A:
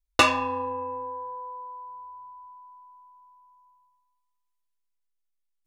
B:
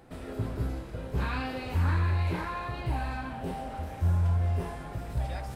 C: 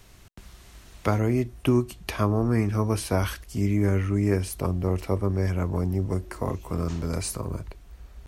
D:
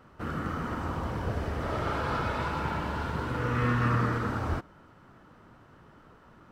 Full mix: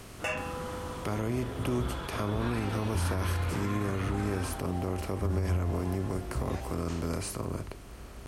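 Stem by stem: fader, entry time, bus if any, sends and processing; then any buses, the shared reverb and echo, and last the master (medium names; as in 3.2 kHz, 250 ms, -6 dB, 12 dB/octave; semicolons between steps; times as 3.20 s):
-5.5 dB, 0.05 s, no send, static phaser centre 1.1 kHz, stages 6
-3.5 dB, 1.20 s, no send, none
-8.0 dB, 0.00 s, no send, spectral levelling over time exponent 0.6
-8.0 dB, 0.00 s, no send, peaking EQ 3.4 kHz +14.5 dB 0.23 oct; peak limiter -22.5 dBFS, peak gain reduction 7.5 dB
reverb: none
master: peak limiter -21 dBFS, peak gain reduction 7.5 dB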